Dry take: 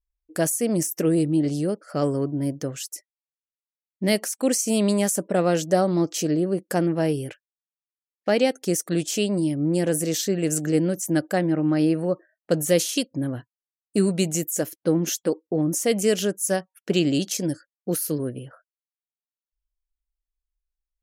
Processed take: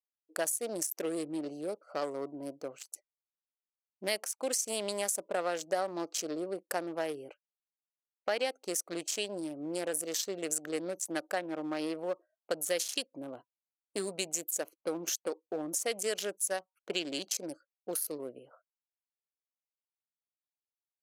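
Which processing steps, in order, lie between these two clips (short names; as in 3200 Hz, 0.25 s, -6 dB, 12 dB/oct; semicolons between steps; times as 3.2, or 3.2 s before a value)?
Wiener smoothing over 25 samples; HPF 690 Hz 12 dB/oct; compressor 2:1, threshold -32 dBFS, peak gain reduction 7 dB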